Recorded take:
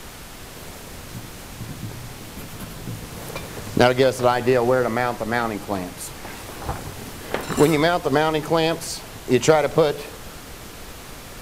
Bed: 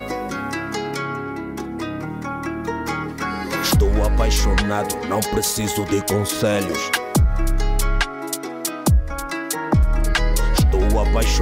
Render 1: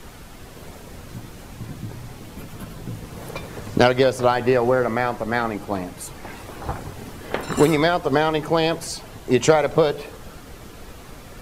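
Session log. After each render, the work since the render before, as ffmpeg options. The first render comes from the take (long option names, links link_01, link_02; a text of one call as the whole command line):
ffmpeg -i in.wav -af "afftdn=noise_reduction=7:noise_floor=-39" out.wav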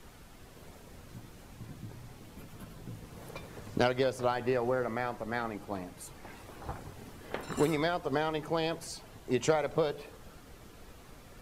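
ffmpeg -i in.wav -af "volume=-12dB" out.wav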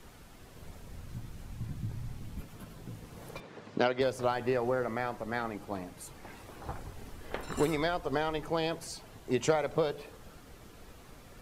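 ffmpeg -i in.wav -filter_complex "[0:a]asplit=3[link_01][link_02][link_03];[link_01]afade=type=out:start_time=0.53:duration=0.02[link_04];[link_02]asubboost=boost=5.5:cutoff=200,afade=type=in:start_time=0.53:duration=0.02,afade=type=out:start_time=2.4:duration=0.02[link_05];[link_03]afade=type=in:start_time=2.4:duration=0.02[link_06];[link_04][link_05][link_06]amix=inputs=3:normalize=0,asettb=1/sr,asplit=3[link_07][link_08][link_09];[link_07]atrim=end=3.404[link_10];[link_08]atrim=start=3.4:end=4.01,asetpts=PTS-STARTPTS,afade=type=in:duration=0.004:curve=qsin,afade=type=out:start_time=0.606:duration=0.004:curve=qsin,highpass=180,lowpass=4500[link_11];[link_09]atrim=start=4.006[link_12];[link_10][link_11]acrossfade=duration=0.004:curve1=hsin:curve2=qsin[link_13];[link_13][link_12]acrossfade=duration=0.004:curve1=qsin:curve2=hsin,asplit=3[link_14][link_15][link_16];[link_14]afade=type=out:start_time=6.73:duration=0.02[link_17];[link_15]asubboost=boost=2.5:cutoff=80,afade=type=in:start_time=6.73:duration=0.02,afade=type=out:start_time=8.52:duration=0.02[link_18];[link_16]afade=type=in:start_time=8.52:duration=0.02[link_19];[link_17][link_18][link_19]amix=inputs=3:normalize=0" out.wav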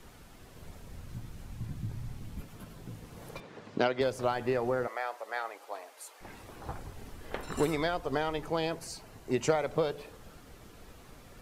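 ffmpeg -i in.wav -filter_complex "[0:a]asettb=1/sr,asplit=3[link_01][link_02][link_03];[link_01]atrim=end=4.874[link_04];[link_02]atrim=start=4.87:end=6.21,asetpts=PTS-STARTPTS,afade=type=in:duration=0.004:curve=qsin,afade=type=out:start_time=1.336:duration=0.004:curve=qsin,highpass=frequency=510:width=0.5412,highpass=frequency=510:width=1.3066[link_05];[link_03]atrim=start=6.206[link_06];[link_04][link_05]acrossfade=duration=0.004:curve1=hsin:curve2=qsin[link_07];[link_07][link_06]acrossfade=duration=0.004:curve1=qsin:curve2=hsin,asettb=1/sr,asplit=3[link_08][link_09][link_10];[link_08]atrim=end=8.654[link_11];[link_09]atrim=start=8.65:end=9.53,asetpts=PTS-STARTPTS,afade=type=in:duration=0.004:curve=qsin,afade=type=out:start_time=0.876:duration=0.004:curve=qsin,equalizer=frequency=3400:width=7.8:gain=-7[link_12];[link_10]atrim=start=9.526[link_13];[link_11][link_12]acrossfade=duration=0.004:curve1=hsin:curve2=qsin[link_14];[link_14][link_13]acrossfade=duration=0.004:curve1=qsin:curve2=hsin" out.wav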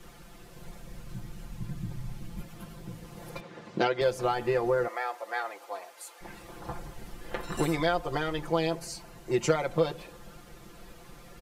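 ffmpeg -i in.wav -af "aecho=1:1:5.8:0.93" out.wav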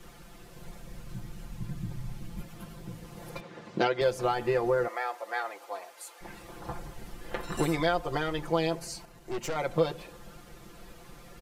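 ffmpeg -i in.wav -filter_complex "[0:a]asettb=1/sr,asplit=3[link_01][link_02][link_03];[link_01]atrim=end=9.054[link_04];[link_02]atrim=start=9.05:end=9.56,asetpts=PTS-STARTPTS,afade=type=in:duration=0.004:curve=qsin,afade=type=out:start_time=0.506:duration=0.004:curve=qsin,aeval=exprs='(tanh(31.6*val(0)+0.75)-tanh(0.75))/31.6':channel_layout=same[link_05];[link_03]atrim=start=9.556[link_06];[link_04][link_05]acrossfade=duration=0.004:curve1=hsin:curve2=qsin[link_07];[link_07][link_06]acrossfade=duration=0.004:curve1=qsin:curve2=hsin" out.wav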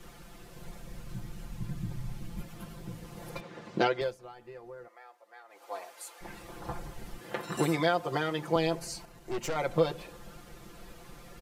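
ffmpeg -i in.wav -filter_complex "[0:a]asettb=1/sr,asplit=3[link_01][link_02][link_03];[link_01]atrim=end=7.184[link_04];[link_02]atrim=start=7.18:end=8.56,asetpts=PTS-STARTPTS,afade=type=in:duration=0.004:curve=qsin,afade=type=out:start_time=1.376:duration=0.004:curve=qsin,highpass=frequency=98:width=0.5412,highpass=frequency=98:width=1.3066[link_05];[link_03]atrim=start=8.556[link_06];[link_04][link_05]acrossfade=duration=0.004:curve1=hsin:curve2=qsin[link_07];[link_07][link_06]acrossfade=duration=0.004:curve1=qsin:curve2=hsin,asplit=3[link_08][link_09][link_10];[link_08]atrim=end=4.18,asetpts=PTS-STARTPTS,afade=type=out:start_time=3.88:duration=0.3:silence=0.1[link_11];[link_09]atrim=start=4.18:end=5.48,asetpts=PTS-STARTPTS,volume=-20dB[link_12];[link_10]atrim=start=5.48,asetpts=PTS-STARTPTS,afade=type=in:duration=0.3:silence=0.1[link_13];[link_11][link_12][link_13]concat=n=3:v=0:a=1" out.wav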